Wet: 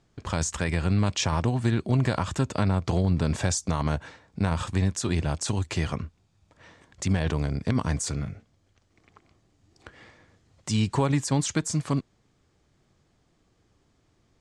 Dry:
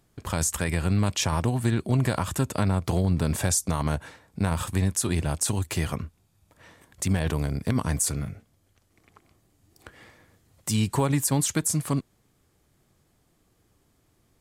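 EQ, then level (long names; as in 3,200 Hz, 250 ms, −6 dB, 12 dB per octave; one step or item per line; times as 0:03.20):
low-pass filter 7,000 Hz 24 dB per octave
0.0 dB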